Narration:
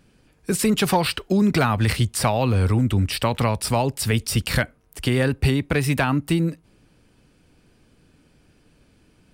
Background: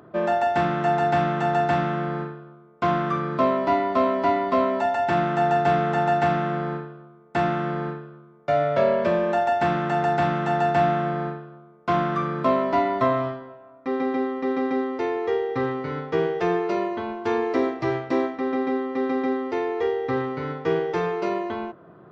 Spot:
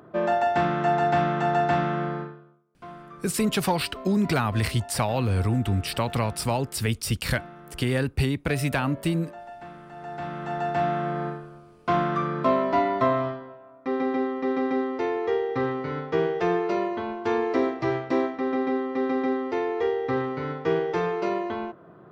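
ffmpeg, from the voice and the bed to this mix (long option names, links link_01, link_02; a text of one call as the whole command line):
ffmpeg -i stem1.wav -i stem2.wav -filter_complex "[0:a]adelay=2750,volume=-4.5dB[link_01];[1:a]volume=18dB,afade=type=out:start_time=2.04:duration=0.6:silence=0.112202,afade=type=in:start_time=9.94:duration=1.44:silence=0.112202[link_02];[link_01][link_02]amix=inputs=2:normalize=0" out.wav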